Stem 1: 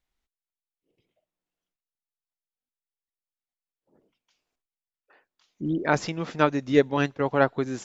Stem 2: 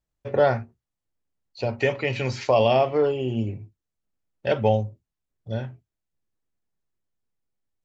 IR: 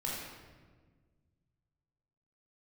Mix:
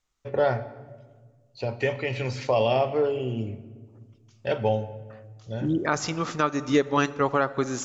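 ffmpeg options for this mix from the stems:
-filter_complex "[0:a]lowpass=f=6800:t=q:w=3,equalizer=f=1200:w=5:g=10.5,volume=1.12,asplit=2[s0][s1];[s1]volume=0.106[s2];[1:a]volume=0.596,asplit=2[s3][s4];[s4]volume=0.2[s5];[2:a]atrim=start_sample=2205[s6];[s2][s5]amix=inputs=2:normalize=0[s7];[s7][s6]afir=irnorm=-1:irlink=0[s8];[s0][s3][s8]amix=inputs=3:normalize=0,alimiter=limit=0.335:level=0:latency=1:release=214"

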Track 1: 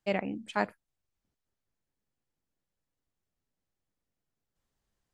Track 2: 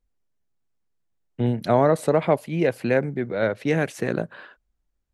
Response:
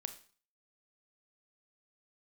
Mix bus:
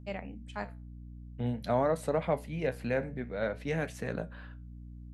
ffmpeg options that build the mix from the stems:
-filter_complex "[0:a]volume=1.12[s0];[1:a]aeval=exprs='val(0)+0.0158*(sin(2*PI*60*n/s)+sin(2*PI*2*60*n/s)/2+sin(2*PI*3*60*n/s)/3+sin(2*PI*4*60*n/s)/4+sin(2*PI*5*60*n/s)/5)':c=same,volume=0.562,asplit=2[s1][s2];[s2]apad=whole_len=226603[s3];[s0][s3]sidechaincompress=threshold=0.00501:ratio=3:attack=8.8:release=289[s4];[s4][s1]amix=inputs=2:normalize=0,equalizer=f=350:w=7.6:g=-13.5,flanger=delay=9.2:depth=8.6:regen=-69:speed=0.5:shape=triangular"

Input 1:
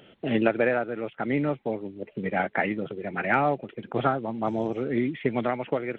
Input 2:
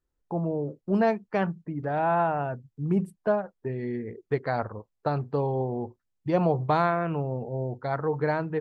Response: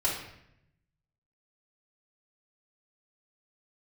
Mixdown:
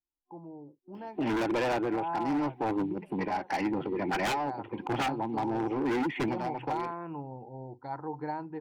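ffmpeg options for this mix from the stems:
-filter_complex "[0:a]dynaudnorm=f=110:g=5:m=5.62,asoftclip=type=tanh:threshold=0.141,adelay=950,volume=0.75[s0];[1:a]volume=0.211,afade=t=in:st=1.63:d=0.47:silence=0.398107,asplit=2[s1][s2];[s2]apad=whole_len=305737[s3];[s0][s3]sidechaincompress=threshold=0.00708:ratio=10:attack=29:release=910[s4];[s4][s1]amix=inputs=2:normalize=0,superequalizer=6b=2.82:9b=3.55:13b=0.631:14b=1.78:15b=0.631,aeval=exprs='0.106*(abs(mod(val(0)/0.106+3,4)-2)-1)':c=same,alimiter=limit=0.0631:level=0:latency=1:release=379"

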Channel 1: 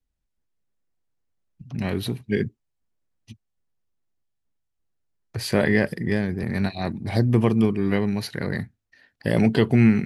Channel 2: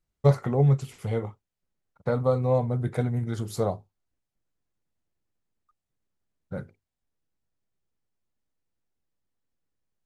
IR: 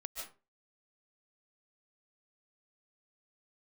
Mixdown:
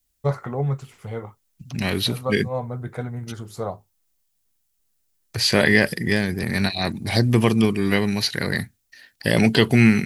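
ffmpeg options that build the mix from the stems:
-filter_complex "[0:a]acrossover=split=6000[s0][s1];[s1]acompressor=threshold=0.00126:ratio=4:attack=1:release=60[s2];[s0][s2]amix=inputs=2:normalize=0,crystalizer=i=6.5:c=0,volume=1.12,asplit=2[s3][s4];[1:a]adynamicequalizer=threshold=0.00794:dfrequency=1300:dqfactor=0.85:tfrequency=1300:tqfactor=0.85:attack=5:release=100:ratio=0.375:range=4:mode=boostabove:tftype=bell,volume=0.631[s5];[s4]apad=whole_len=443614[s6];[s5][s6]sidechaincompress=threshold=0.0178:ratio=8:attack=34:release=115[s7];[s3][s7]amix=inputs=2:normalize=0"

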